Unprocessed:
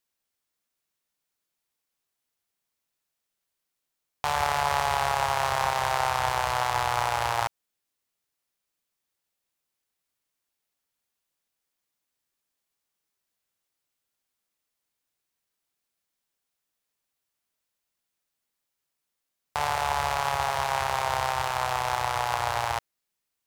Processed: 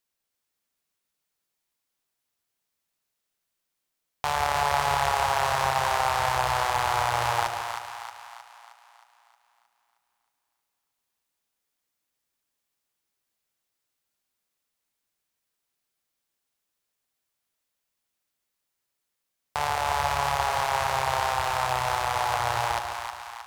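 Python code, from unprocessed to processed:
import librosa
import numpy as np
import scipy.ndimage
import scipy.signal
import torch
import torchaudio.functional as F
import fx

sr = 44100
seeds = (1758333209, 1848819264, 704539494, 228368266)

y = fx.echo_split(x, sr, split_hz=780.0, low_ms=141, high_ms=313, feedback_pct=52, wet_db=-6)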